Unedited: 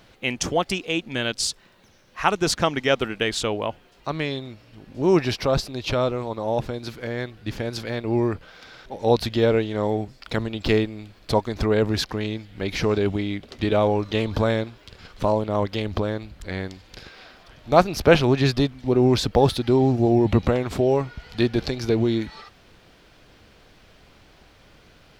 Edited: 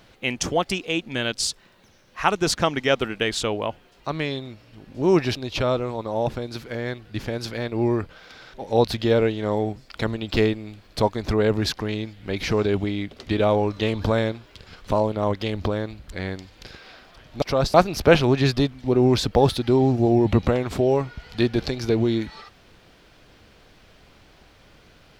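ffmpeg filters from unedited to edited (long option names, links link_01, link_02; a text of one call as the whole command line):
ffmpeg -i in.wav -filter_complex "[0:a]asplit=4[link_01][link_02][link_03][link_04];[link_01]atrim=end=5.352[link_05];[link_02]atrim=start=5.668:end=17.742[link_06];[link_03]atrim=start=5.348:end=5.672[link_07];[link_04]atrim=start=17.738[link_08];[link_05][link_06]acrossfade=duration=0.004:curve1=hsin:curve2=hsin[link_09];[link_09][link_07]acrossfade=duration=0.004:curve1=hsin:curve2=hsin[link_10];[link_10][link_08]acrossfade=duration=0.004:curve1=hsin:curve2=hsin" out.wav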